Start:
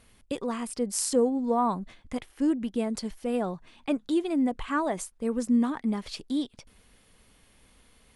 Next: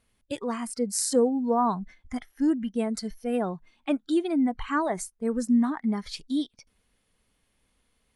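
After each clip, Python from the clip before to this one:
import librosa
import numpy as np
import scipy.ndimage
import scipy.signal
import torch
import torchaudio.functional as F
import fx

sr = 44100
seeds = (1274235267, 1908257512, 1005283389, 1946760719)

y = fx.noise_reduce_blind(x, sr, reduce_db=13)
y = y * 10.0 ** (1.5 / 20.0)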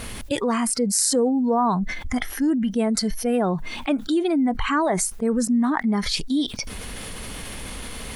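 y = fx.env_flatten(x, sr, amount_pct=70)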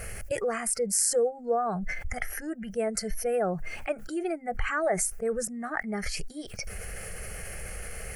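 y = fx.fixed_phaser(x, sr, hz=990.0, stages=6)
y = y * 10.0 ** (-2.0 / 20.0)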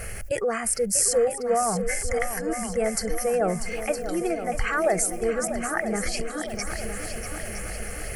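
y = fx.echo_heads(x, sr, ms=321, heads='second and third', feedback_pct=58, wet_db=-10.5)
y = y * 10.0 ** (3.5 / 20.0)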